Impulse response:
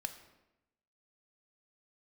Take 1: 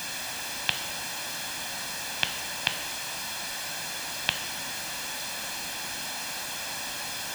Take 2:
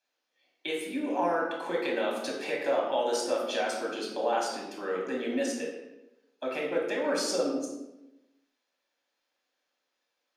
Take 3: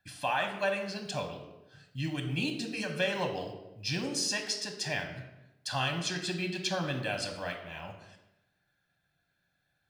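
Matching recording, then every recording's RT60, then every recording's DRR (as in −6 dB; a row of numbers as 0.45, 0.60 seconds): 1; 0.90, 0.90, 0.90 seconds; 8.0, −2.5, 4.0 decibels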